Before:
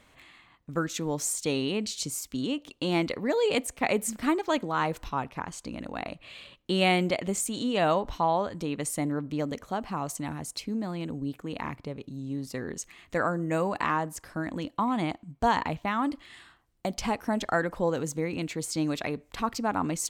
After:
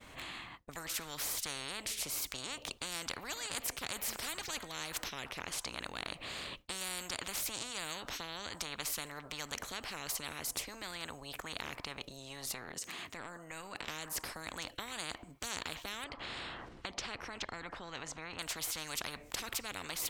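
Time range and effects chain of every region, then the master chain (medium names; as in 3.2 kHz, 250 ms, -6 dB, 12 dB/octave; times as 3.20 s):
12.53–13.88 s: high-pass 150 Hz + transient shaper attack -9 dB, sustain +2 dB + compression 2:1, threshold -48 dBFS
16.04–18.39 s: tape spacing loss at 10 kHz 26 dB + upward compressor, threshold -34 dBFS
whole clip: expander -55 dBFS; spectrum-flattening compressor 10:1; trim -5.5 dB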